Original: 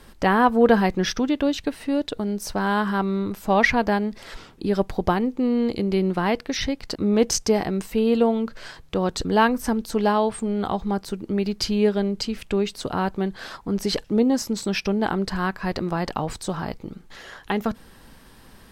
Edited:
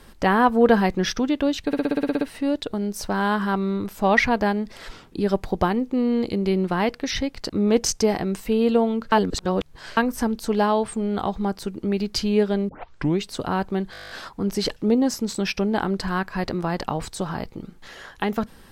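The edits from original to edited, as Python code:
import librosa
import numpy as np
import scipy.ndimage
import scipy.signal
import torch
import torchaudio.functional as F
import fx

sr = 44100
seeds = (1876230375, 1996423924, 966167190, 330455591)

y = fx.edit(x, sr, fx.stutter(start_s=1.67, slice_s=0.06, count=10),
    fx.reverse_span(start_s=8.58, length_s=0.85),
    fx.tape_start(start_s=12.15, length_s=0.51),
    fx.stutter(start_s=13.38, slice_s=0.02, count=10), tone=tone)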